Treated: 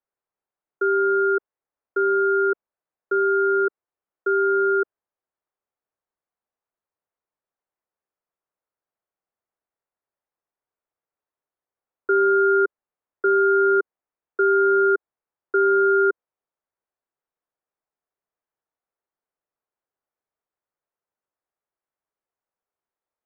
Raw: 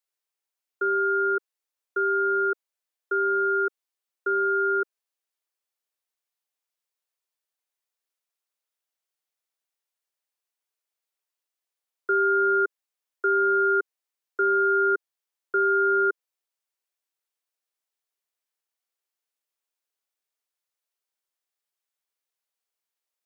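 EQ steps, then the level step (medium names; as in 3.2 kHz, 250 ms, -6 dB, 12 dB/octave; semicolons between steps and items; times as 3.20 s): low-pass 1.4 kHz; distance through air 370 m; +7.0 dB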